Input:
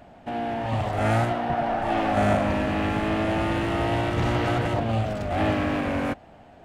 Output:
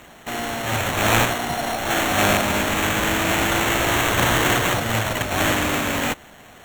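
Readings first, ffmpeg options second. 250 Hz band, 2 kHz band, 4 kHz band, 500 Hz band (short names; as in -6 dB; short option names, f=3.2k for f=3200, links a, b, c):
+0.5 dB, +10.0 dB, +13.5 dB, +1.5 dB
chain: -af "aexciter=amount=10:drive=9.9:freq=3.1k,acrusher=samples=9:mix=1:aa=0.000001,volume=-1dB"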